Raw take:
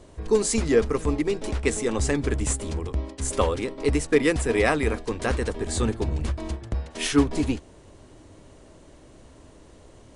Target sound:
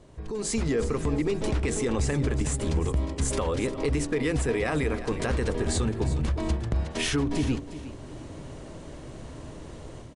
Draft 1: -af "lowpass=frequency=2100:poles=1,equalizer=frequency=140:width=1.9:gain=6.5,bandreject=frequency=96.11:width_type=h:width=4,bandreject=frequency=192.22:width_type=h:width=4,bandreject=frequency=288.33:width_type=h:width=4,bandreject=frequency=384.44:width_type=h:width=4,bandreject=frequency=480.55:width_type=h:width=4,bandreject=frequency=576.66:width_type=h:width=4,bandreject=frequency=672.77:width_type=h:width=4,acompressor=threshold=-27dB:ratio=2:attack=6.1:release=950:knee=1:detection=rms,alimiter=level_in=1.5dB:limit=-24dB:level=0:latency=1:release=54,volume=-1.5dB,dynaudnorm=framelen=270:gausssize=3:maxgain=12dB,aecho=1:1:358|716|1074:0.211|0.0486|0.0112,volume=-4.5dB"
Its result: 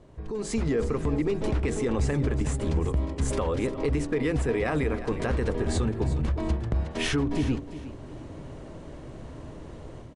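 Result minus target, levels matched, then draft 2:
8,000 Hz band −6.5 dB
-af "lowpass=frequency=7100:poles=1,equalizer=frequency=140:width=1.9:gain=6.5,bandreject=frequency=96.11:width_type=h:width=4,bandreject=frequency=192.22:width_type=h:width=4,bandreject=frequency=288.33:width_type=h:width=4,bandreject=frequency=384.44:width_type=h:width=4,bandreject=frequency=480.55:width_type=h:width=4,bandreject=frequency=576.66:width_type=h:width=4,bandreject=frequency=672.77:width_type=h:width=4,acompressor=threshold=-27dB:ratio=2:attack=6.1:release=950:knee=1:detection=rms,alimiter=level_in=1.5dB:limit=-24dB:level=0:latency=1:release=54,volume=-1.5dB,dynaudnorm=framelen=270:gausssize=3:maxgain=12dB,aecho=1:1:358|716|1074:0.211|0.0486|0.0112,volume=-4.5dB"

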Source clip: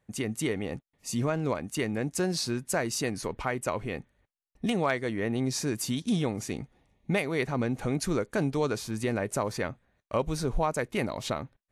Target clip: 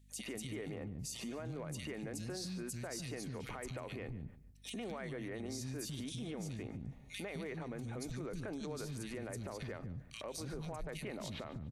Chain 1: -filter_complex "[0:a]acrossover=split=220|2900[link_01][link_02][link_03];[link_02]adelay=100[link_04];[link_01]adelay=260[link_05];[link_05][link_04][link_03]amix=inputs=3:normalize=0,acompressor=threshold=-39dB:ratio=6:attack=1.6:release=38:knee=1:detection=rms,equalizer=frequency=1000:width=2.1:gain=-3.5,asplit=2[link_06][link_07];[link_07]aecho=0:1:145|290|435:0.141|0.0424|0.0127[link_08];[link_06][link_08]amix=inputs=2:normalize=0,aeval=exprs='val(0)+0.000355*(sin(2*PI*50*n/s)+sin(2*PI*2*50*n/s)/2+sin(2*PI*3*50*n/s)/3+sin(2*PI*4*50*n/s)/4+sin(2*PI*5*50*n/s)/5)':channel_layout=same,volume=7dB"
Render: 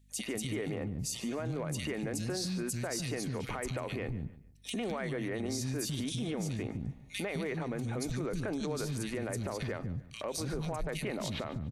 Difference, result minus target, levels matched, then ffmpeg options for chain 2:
downward compressor: peak gain reduction −7.5 dB
-filter_complex "[0:a]acrossover=split=220|2900[link_01][link_02][link_03];[link_02]adelay=100[link_04];[link_01]adelay=260[link_05];[link_05][link_04][link_03]amix=inputs=3:normalize=0,acompressor=threshold=-48dB:ratio=6:attack=1.6:release=38:knee=1:detection=rms,equalizer=frequency=1000:width=2.1:gain=-3.5,asplit=2[link_06][link_07];[link_07]aecho=0:1:145|290|435:0.141|0.0424|0.0127[link_08];[link_06][link_08]amix=inputs=2:normalize=0,aeval=exprs='val(0)+0.000355*(sin(2*PI*50*n/s)+sin(2*PI*2*50*n/s)/2+sin(2*PI*3*50*n/s)/3+sin(2*PI*4*50*n/s)/4+sin(2*PI*5*50*n/s)/5)':channel_layout=same,volume=7dB"

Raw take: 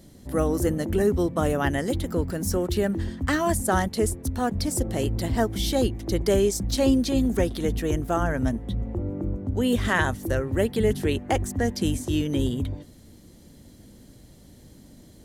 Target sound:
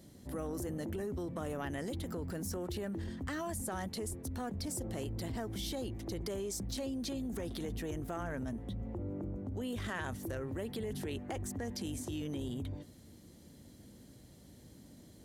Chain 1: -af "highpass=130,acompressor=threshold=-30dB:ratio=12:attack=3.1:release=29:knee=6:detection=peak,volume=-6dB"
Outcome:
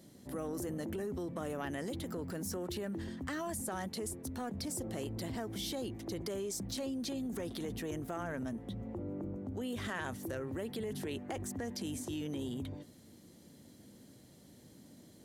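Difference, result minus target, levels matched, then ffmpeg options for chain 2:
125 Hz band −2.5 dB
-af "highpass=59,acompressor=threshold=-30dB:ratio=12:attack=3.1:release=29:knee=6:detection=peak,volume=-6dB"

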